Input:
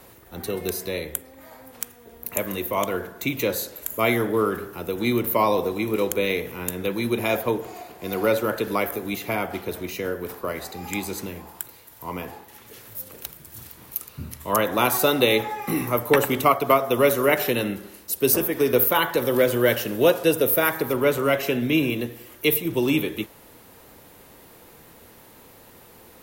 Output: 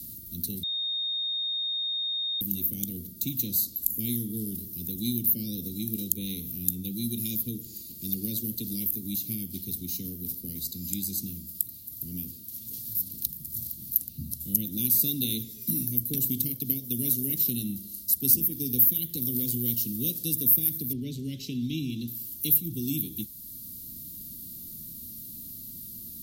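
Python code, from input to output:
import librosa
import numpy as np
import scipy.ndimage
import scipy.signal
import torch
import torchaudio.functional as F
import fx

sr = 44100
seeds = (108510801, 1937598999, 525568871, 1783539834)

y = fx.peak_eq(x, sr, hz=4400.0, db=4.5, octaves=0.77, at=(12.86, 13.26))
y = fx.lowpass(y, sr, hz=4100.0, slope=12, at=(20.93, 22.08))
y = fx.edit(y, sr, fx.bleep(start_s=0.63, length_s=1.78, hz=3690.0, db=-23.5), tone=tone)
y = scipy.signal.sosfilt(scipy.signal.cheby1(3, 1.0, [240.0, 4300.0], 'bandstop', fs=sr, output='sos'), y)
y = fx.peak_eq(y, sr, hz=13000.0, db=11.0, octaves=0.45)
y = fx.band_squash(y, sr, depth_pct=40)
y = y * 10.0 ** (-2.0 / 20.0)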